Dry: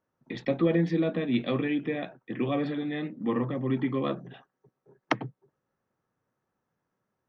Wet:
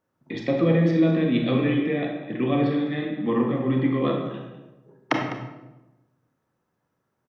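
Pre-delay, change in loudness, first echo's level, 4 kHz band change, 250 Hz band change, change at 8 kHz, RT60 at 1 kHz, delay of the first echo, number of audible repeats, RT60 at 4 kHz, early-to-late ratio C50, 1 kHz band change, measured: 26 ms, +6.0 dB, -13.5 dB, +4.5 dB, +6.0 dB, no reading, 0.95 s, 203 ms, 1, 0.70 s, 3.5 dB, +5.0 dB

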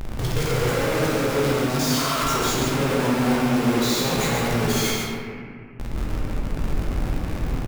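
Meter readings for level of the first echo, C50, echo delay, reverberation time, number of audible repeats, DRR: -5.0 dB, -3.0 dB, 138 ms, 2.2 s, 1, -6.0 dB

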